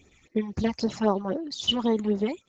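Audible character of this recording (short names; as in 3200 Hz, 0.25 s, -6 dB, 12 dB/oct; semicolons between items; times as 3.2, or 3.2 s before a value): phasing stages 8, 3.8 Hz, lowest notch 420–3100 Hz; Opus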